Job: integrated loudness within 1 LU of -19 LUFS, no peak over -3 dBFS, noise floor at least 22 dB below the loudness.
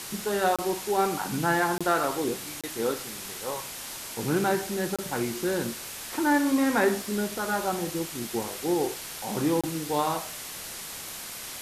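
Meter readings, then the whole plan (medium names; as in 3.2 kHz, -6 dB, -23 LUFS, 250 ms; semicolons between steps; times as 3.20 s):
dropouts 5; longest dropout 26 ms; noise floor -39 dBFS; noise floor target -51 dBFS; loudness -28.5 LUFS; peak level -9.0 dBFS; loudness target -19.0 LUFS
-> interpolate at 0.56/1.78/2.61/4.96/9.61 s, 26 ms; noise print and reduce 12 dB; trim +9.5 dB; peak limiter -3 dBFS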